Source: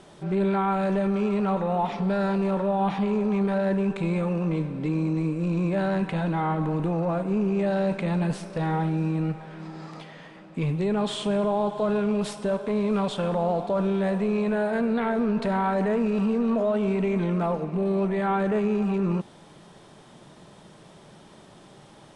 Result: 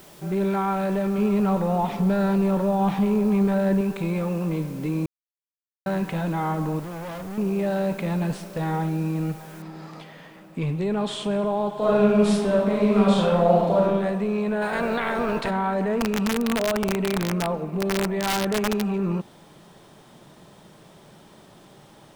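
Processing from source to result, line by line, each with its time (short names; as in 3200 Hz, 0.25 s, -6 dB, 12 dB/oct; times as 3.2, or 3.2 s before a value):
1.18–3.81 low shelf 230 Hz +7.5 dB
5.06–5.86 mute
6.79–7.38 hard clip -32.5 dBFS
9.62 noise floor step -52 dB -67 dB
11.77–13.81 reverb throw, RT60 1 s, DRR -5 dB
14.61–15.49 spectral limiter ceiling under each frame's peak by 17 dB
15.99–18.83 wrapped overs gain 17.5 dB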